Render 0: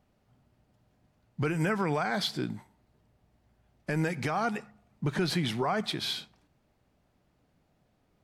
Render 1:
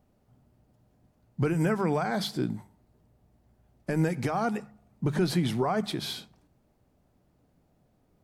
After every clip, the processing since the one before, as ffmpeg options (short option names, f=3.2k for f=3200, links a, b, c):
-af "equalizer=f=2.6k:w=0.41:g=-8.5,bandreject=f=50:t=h:w=6,bandreject=f=100:t=h:w=6,bandreject=f=150:t=h:w=6,bandreject=f=200:t=h:w=6,volume=4.5dB"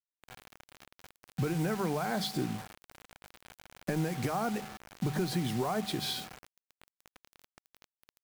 -af "acompressor=threshold=-37dB:ratio=3,aeval=exprs='val(0)+0.00282*sin(2*PI*760*n/s)':c=same,acrusher=bits=7:mix=0:aa=0.000001,volume=5dB"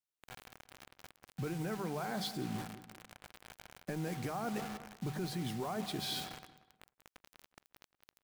-filter_complex "[0:a]asplit=2[a][b];[b]adelay=183,lowpass=f=2.8k:p=1,volume=-14.5dB,asplit=2[c][d];[d]adelay=183,lowpass=f=2.8k:p=1,volume=0.37,asplit=2[e][f];[f]adelay=183,lowpass=f=2.8k:p=1,volume=0.37[g];[a][c][e][g]amix=inputs=4:normalize=0,areverse,acompressor=threshold=-35dB:ratio=6,areverse"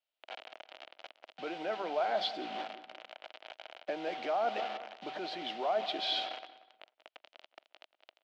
-af "highpass=f=370:w=0.5412,highpass=f=370:w=1.3066,equalizer=f=420:t=q:w=4:g=-7,equalizer=f=640:t=q:w=4:g=9,equalizer=f=1.1k:t=q:w=4:g=-5,equalizer=f=1.7k:t=q:w=4:g=-4,equalizer=f=3k:t=q:w=4:g=5,lowpass=f=4.1k:w=0.5412,lowpass=f=4.1k:w=1.3066,volume=6dB"